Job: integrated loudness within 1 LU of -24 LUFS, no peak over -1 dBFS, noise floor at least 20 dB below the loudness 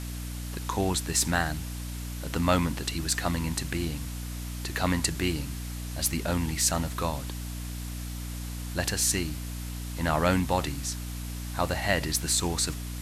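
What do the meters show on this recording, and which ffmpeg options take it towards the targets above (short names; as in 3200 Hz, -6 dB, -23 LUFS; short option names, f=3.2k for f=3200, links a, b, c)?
hum 60 Hz; harmonics up to 300 Hz; hum level -33 dBFS; noise floor -36 dBFS; noise floor target -49 dBFS; loudness -29.0 LUFS; peak -9.5 dBFS; loudness target -24.0 LUFS
-> -af "bandreject=f=60:t=h:w=6,bandreject=f=120:t=h:w=6,bandreject=f=180:t=h:w=6,bandreject=f=240:t=h:w=6,bandreject=f=300:t=h:w=6"
-af "afftdn=nr=13:nf=-36"
-af "volume=5dB"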